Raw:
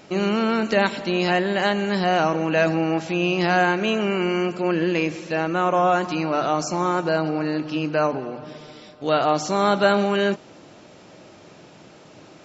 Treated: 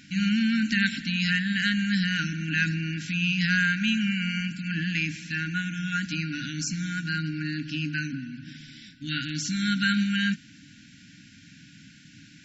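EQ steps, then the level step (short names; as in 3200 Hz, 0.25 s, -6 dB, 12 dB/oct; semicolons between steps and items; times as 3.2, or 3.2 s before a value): brick-wall FIR band-stop 300–1400 Hz; 0.0 dB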